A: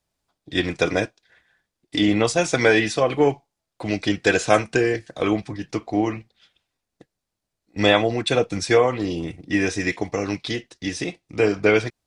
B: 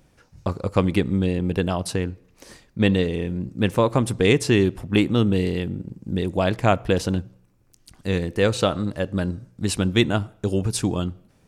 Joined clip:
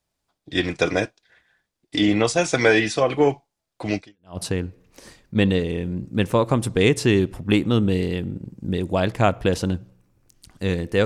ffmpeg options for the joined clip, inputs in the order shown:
ffmpeg -i cue0.wav -i cue1.wav -filter_complex "[0:a]apad=whole_dur=11.05,atrim=end=11.05,atrim=end=4.38,asetpts=PTS-STARTPTS[link_01];[1:a]atrim=start=1.42:end=8.49,asetpts=PTS-STARTPTS[link_02];[link_01][link_02]acrossfade=duration=0.4:curve1=exp:curve2=exp" out.wav

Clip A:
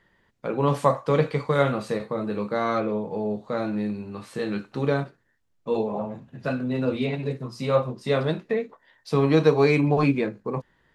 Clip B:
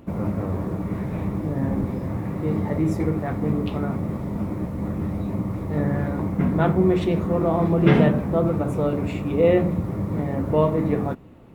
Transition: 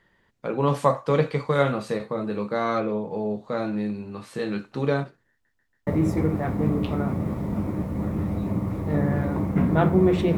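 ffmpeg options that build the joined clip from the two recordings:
ffmpeg -i cue0.wav -i cue1.wav -filter_complex "[0:a]apad=whole_dur=10.37,atrim=end=10.37,asplit=4[link_01][link_02][link_03][link_04];[link_01]atrim=end=5.452[link_05];[link_02]atrim=start=5.308:end=5.452[link_06];[link_03]atrim=start=5.308:end=5.452[link_07];[link_04]atrim=start=5.308:end=5.452[link_08];[1:a]atrim=start=2.698:end=7.2[link_09];[link_05][link_06]acrossfade=duration=0.004:curve1=hsin:curve2=hsin[link_10];[link_10][link_07]acrossfade=duration=0.004:curve1=hsin:curve2=hsin[link_11];[link_11][link_08]acrossfade=duration=0.004:curve1=hsin:curve2=hsin[link_12];[link_12][link_09]acrossfade=duration=0.004:curve1=hsin:curve2=hsin" out.wav

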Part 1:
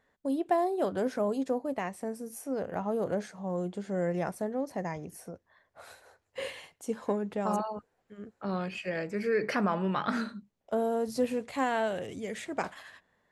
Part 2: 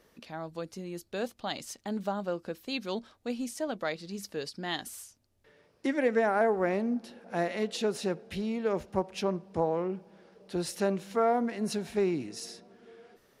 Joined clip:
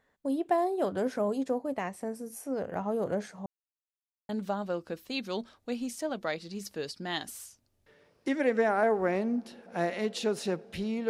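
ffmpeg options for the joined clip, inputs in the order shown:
ffmpeg -i cue0.wav -i cue1.wav -filter_complex "[0:a]apad=whole_dur=11.09,atrim=end=11.09,asplit=2[link_01][link_02];[link_01]atrim=end=3.46,asetpts=PTS-STARTPTS,afade=type=out:start_time=3.456:duration=0.004:curve=hsin[link_03];[link_02]atrim=start=3.46:end=4.29,asetpts=PTS-STARTPTS,volume=0[link_04];[1:a]atrim=start=1.87:end=8.67,asetpts=PTS-STARTPTS,afade=type=in:duration=0.004:curve=hsin[link_05];[link_03][link_04][link_05]concat=n=3:v=0:a=1" out.wav

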